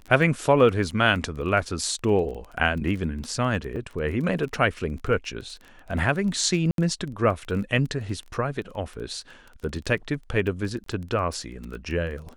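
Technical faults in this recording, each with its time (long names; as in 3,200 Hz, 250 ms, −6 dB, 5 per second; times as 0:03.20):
surface crackle 17 per second −31 dBFS
0:03.76: drop-out 4.8 ms
0:06.71–0:06.78: drop-out 72 ms
0:10.84–0:10.86: drop-out 23 ms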